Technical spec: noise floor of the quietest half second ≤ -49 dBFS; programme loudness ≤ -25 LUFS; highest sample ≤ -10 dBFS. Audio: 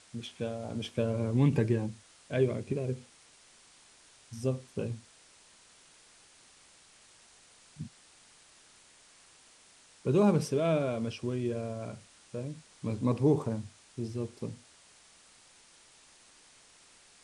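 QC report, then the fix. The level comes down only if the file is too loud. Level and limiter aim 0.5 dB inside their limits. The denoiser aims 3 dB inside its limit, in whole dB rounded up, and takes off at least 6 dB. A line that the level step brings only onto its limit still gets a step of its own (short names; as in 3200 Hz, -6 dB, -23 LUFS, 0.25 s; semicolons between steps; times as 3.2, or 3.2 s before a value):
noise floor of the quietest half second -60 dBFS: OK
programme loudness -32.0 LUFS: OK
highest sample -14.0 dBFS: OK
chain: none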